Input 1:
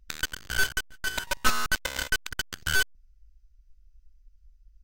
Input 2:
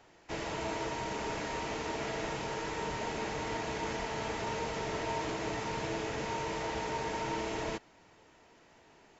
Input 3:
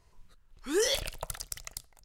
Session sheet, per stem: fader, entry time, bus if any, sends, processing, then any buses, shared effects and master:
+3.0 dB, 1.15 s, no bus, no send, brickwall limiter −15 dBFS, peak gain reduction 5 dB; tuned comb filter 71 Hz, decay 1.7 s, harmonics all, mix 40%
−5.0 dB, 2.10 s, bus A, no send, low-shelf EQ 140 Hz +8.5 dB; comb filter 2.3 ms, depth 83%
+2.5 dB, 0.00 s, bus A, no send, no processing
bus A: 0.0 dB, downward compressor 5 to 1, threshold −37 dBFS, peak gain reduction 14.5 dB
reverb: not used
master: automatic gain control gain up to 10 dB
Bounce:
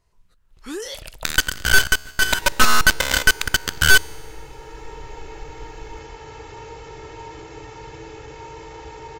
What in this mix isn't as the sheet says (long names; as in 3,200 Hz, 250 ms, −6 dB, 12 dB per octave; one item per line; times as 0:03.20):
stem 1 +3.0 dB → +10.0 dB
stem 2 −5.0 dB → −16.5 dB
stem 3 +2.5 dB → −4.0 dB